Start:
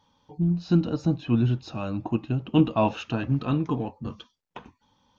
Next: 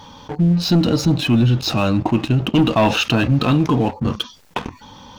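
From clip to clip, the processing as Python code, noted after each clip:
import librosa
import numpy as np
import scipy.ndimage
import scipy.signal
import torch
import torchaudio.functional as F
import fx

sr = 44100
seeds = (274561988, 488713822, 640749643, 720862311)

y = fx.dynamic_eq(x, sr, hz=4700.0, q=0.72, threshold_db=-52.0, ratio=4.0, max_db=7)
y = fx.leveller(y, sr, passes=2)
y = fx.env_flatten(y, sr, amount_pct=50)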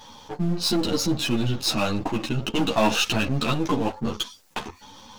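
y = np.where(x < 0.0, 10.0 ** (-7.0 / 20.0) * x, x)
y = fx.bass_treble(y, sr, bass_db=-5, treble_db=7)
y = fx.ensemble(y, sr)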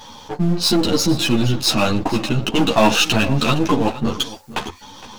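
y = x + 10.0 ** (-17.0 / 20.0) * np.pad(x, (int(464 * sr / 1000.0), 0))[:len(x)]
y = F.gain(torch.from_numpy(y), 6.5).numpy()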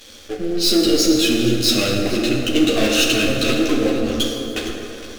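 y = fx.leveller(x, sr, passes=3)
y = fx.fixed_phaser(y, sr, hz=380.0, stages=4)
y = fx.rev_plate(y, sr, seeds[0], rt60_s=3.3, hf_ratio=0.45, predelay_ms=0, drr_db=0.0)
y = F.gain(torch.from_numpy(y), -8.5).numpy()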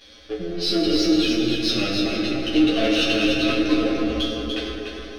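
y = scipy.signal.savgol_filter(x, 15, 4, mode='constant')
y = fx.comb_fb(y, sr, f0_hz=61.0, decay_s=0.2, harmonics='odd', damping=0.0, mix_pct=90)
y = y + 10.0 ** (-5.0 / 20.0) * np.pad(y, (int(293 * sr / 1000.0), 0))[:len(y)]
y = F.gain(torch.from_numpy(y), 3.5).numpy()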